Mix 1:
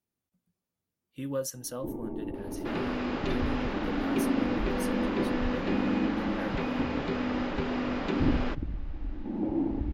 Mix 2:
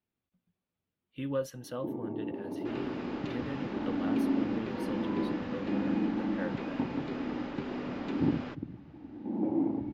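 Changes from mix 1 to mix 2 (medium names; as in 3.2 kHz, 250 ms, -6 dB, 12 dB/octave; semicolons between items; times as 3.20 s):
speech: add resonant high shelf 4.7 kHz -13 dB, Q 1.5; first sound: add high-pass 120 Hz 24 dB/octave; second sound -8.0 dB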